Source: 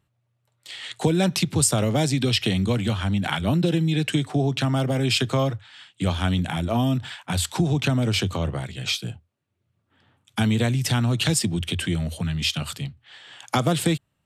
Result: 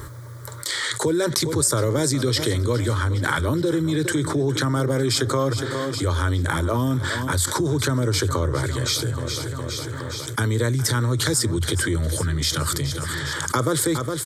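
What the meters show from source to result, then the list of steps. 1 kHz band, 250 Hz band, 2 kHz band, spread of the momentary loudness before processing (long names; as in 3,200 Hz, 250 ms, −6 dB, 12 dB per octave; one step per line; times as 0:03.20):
+2.5 dB, −1.0 dB, +3.5 dB, 8 LU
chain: phaser with its sweep stopped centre 730 Hz, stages 6
repeating echo 413 ms, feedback 53%, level −17 dB
envelope flattener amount 70%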